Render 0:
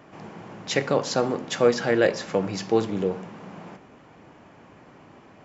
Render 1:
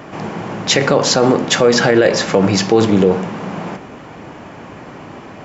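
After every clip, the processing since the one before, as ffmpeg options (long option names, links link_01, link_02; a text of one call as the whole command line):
ffmpeg -i in.wav -af "alimiter=level_in=17dB:limit=-1dB:release=50:level=0:latency=1,volume=-1dB" out.wav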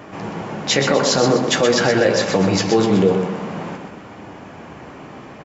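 ffmpeg -i in.wav -af "flanger=delay=9.8:depth=5.3:regen=-39:speed=0.49:shape=sinusoidal,aecho=1:1:125|250|375|500|625:0.447|0.179|0.0715|0.0286|0.0114" out.wav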